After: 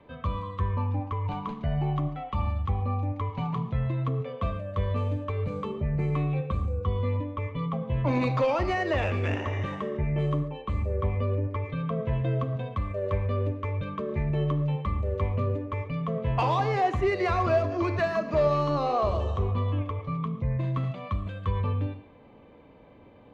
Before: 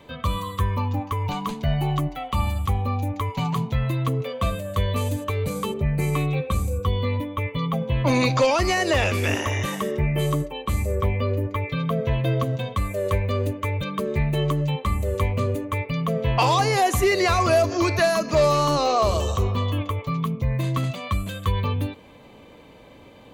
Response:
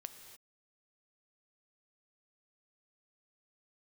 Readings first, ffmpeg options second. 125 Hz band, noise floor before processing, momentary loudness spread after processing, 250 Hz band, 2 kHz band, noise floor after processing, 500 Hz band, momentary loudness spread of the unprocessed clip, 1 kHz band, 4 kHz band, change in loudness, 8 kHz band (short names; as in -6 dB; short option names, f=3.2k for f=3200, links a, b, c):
-3.5 dB, -47 dBFS, 7 LU, -5.0 dB, -8.5 dB, -52 dBFS, -5.0 dB, 7 LU, -5.5 dB, -14.0 dB, -5.0 dB, under -20 dB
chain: -filter_complex "[0:a]lowpass=f=3.6k:p=1,acrossover=split=280[a][b];[b]adynamicsmooth=sensitivity=0.5:basefreq=2.8k[c];[a][c]amix=inputs=2:normalize=0[d];[1:a]atrim=start_sample=2205,atrim=end_sample=6615[e];[d][e]afir=irnorm=-1:irlink=0"